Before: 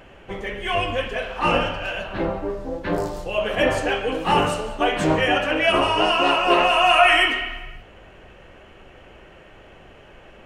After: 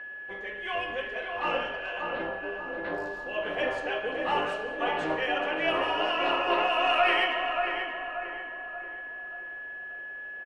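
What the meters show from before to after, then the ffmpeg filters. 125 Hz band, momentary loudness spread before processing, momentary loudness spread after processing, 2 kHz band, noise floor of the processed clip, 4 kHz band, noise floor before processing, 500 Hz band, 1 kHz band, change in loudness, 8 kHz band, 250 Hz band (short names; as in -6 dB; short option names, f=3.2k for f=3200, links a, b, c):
-19.0 dB, 14 LU, 14 LU, -6.0 dB, -40 dBFS, -9.5 dB, -47 dBFS, -8.0 dB, -7.5 dB, -9.5 dB, under -15 dB, -11.5 dB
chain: -filter_complex "[0:a]aeval=exprs='val(0)+0.0355*sin(2*PI*1700*n/s)':c=same,acrossover=split=290 4600:gain=0.2 1 0.178[a][b][c];[a][b][c]amix=inputs=3:normalize=0,aeval=exprs='0.708*(cos(1*acos(clip(val(0)/0.708,-1,1)))-cos(1*PI/2))+0.0447*(cos(2*acos(clip(val(0)/0.708,-1,1)))-cos(2*PI/2))':c=same,asplit=2[d][e];[e]adelay=583,lowpass=f=1.8k:p=1,volume=-4dB,asplit=2[f][g];[g]adelay=583,lowpass=f=1.8k:p=1,volume=0.49,asplit=2[h][i];[i]adelay=583,lowpass=f=1.8k:p=1,volume=0.49,asplit=2[j][k];[k]adelay=583,lowpass=f=1.8k:p=1,volume=0.49,asplit=2[l][m];[m]adelay=583,lowpass=f=1.8k:p=1,volume=0.49,asplit=2[n][o];[o]adelay=583,lowpass=f=1.8k:p=1,volume=0.49[p];[f][h][j][l][n][p]amix=inputs=6:normalize=0[q];[d][q]amix=inputs=2:normalize=0,volume=-9dB"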